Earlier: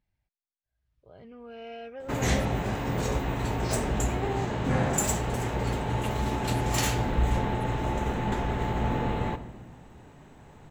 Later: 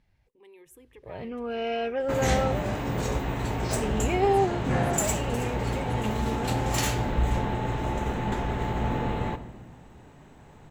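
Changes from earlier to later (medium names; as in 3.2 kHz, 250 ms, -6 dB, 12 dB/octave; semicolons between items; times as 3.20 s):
speech: entry -1.70 s; first sound +12.0 dB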